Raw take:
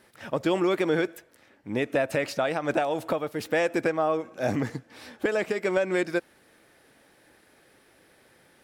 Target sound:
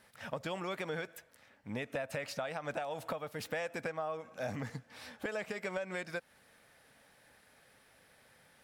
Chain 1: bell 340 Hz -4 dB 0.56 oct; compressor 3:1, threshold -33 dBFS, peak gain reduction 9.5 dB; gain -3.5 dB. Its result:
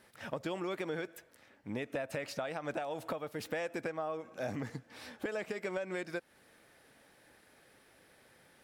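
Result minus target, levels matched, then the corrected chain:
250 Hz band +2.5 dB
bell 340 Hz -13.5 dB 0.56 oct; compressor 3:1, threshold -33 dBFS, peak gain reduction 8.5 dB; gain -3.5 dB

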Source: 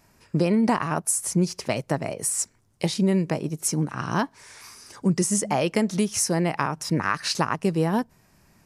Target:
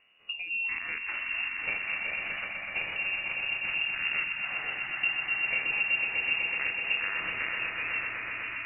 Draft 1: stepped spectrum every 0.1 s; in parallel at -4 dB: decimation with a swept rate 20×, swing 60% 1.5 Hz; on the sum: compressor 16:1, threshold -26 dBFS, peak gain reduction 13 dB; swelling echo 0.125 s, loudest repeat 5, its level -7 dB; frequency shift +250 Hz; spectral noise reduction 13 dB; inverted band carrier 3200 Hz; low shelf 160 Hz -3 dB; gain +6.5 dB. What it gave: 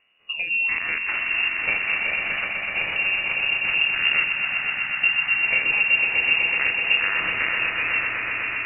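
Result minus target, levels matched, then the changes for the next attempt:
compressor: peak gain reduction -9 dB
change: compressor 16:1, threshold -35.5 dBFS, peak gain reduction 22 dB

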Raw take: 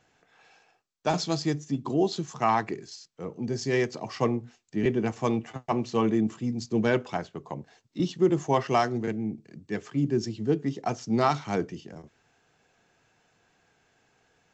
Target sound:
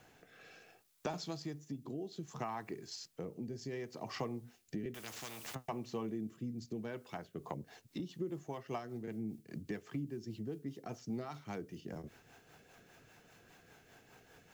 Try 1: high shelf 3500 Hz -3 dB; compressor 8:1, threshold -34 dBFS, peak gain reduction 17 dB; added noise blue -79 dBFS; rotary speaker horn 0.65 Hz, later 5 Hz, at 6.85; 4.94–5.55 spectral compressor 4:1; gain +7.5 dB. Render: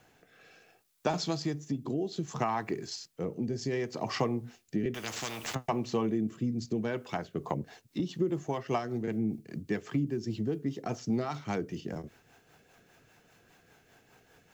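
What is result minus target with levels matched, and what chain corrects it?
compressor: peak gain reduction -10 dB
high shelf 3500 Hz -3 dB; compressor 8:1, threshold -45.5 dBFS, peak gain reduction 27 dB; added noise blue -79 dBFS; rotary speaker horn 0.65 Hz, later 5 Hz, at 6.85; 4.94–5.55 spectral compressor 4:1; gain +7.5 dB

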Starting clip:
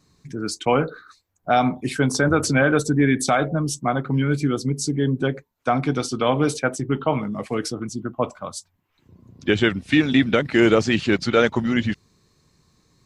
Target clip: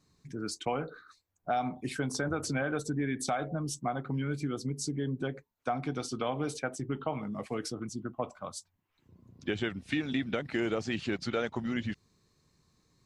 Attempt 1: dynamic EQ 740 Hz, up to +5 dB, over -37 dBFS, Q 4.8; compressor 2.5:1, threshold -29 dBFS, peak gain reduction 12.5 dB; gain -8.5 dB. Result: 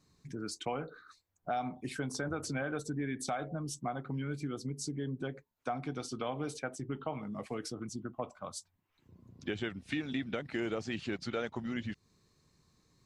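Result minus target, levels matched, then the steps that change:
compressor: peak gain reduction +4 dB
change: compressor 2.5:1, threshold -22 dBFS, peak gain reduction 8 dB

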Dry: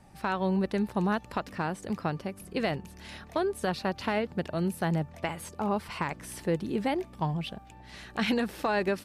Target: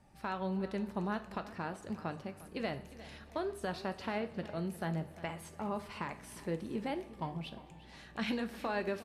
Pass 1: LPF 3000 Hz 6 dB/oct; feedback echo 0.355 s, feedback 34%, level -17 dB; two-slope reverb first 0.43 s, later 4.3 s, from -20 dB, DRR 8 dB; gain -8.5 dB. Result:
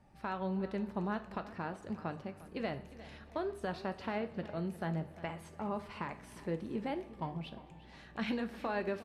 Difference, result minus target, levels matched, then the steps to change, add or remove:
8000 Hz band -7.0 dB
change: LPF 11000 Hz 6 dB/oct

